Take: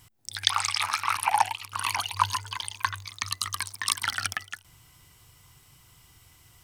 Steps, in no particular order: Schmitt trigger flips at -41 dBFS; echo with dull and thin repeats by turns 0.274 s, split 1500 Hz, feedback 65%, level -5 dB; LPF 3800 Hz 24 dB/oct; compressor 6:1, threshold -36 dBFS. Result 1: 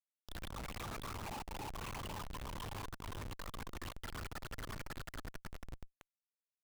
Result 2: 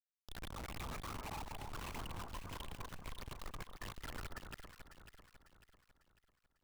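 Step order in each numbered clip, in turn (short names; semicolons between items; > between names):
echo with dull and thin repeats by turns > compressor > LPF > Schmitt trigger; compressor > LPF > Schmitt trigger > echo with dull and thin repeats by turns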